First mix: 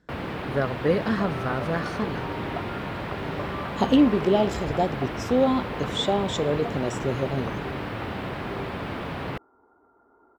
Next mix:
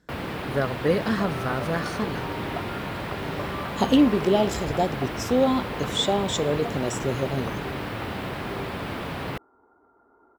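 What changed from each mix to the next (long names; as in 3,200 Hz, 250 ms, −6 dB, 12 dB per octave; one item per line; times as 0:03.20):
master: add high-shelf EQ 5,900 Hz +11.5 dB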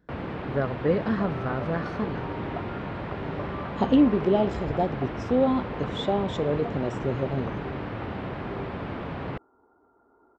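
master: add head-to-tape spacing loss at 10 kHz 30 dB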